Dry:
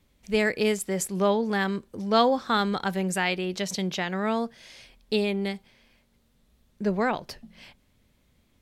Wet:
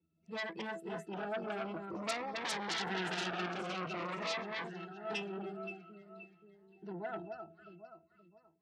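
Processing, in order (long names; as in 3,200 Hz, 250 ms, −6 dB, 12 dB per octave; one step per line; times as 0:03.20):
spectral magnitudes quantised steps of 30 dB
source passing by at 0:02.91, 7 m/s, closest 1.7 metres
on a send: delay that swaps between a low-pass and a high-pass 263 ms, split 1,500 Hz, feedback 62%, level −7 dB
on the sum: downward compressor 2 to 1, threshold −40 dBFS, peak gain reduction 9.5 dB
parametric band 2,800 Hz −3.5 dB 0.45 octaves
resonances in every octave E, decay 0.16 s
in parallel at −11 dB: sine wavefolder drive 19 dB, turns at −38.5 dBFS
on the sum: meter weighting curve A
phaser whose notches keep moving one way falling 0.49 Hz
level +16.5 dB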